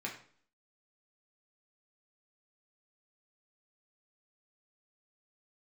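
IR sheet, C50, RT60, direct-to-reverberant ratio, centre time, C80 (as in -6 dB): 8.0 dB, 0.50 s, -2.5 dB, 23 ms, 12.0 dB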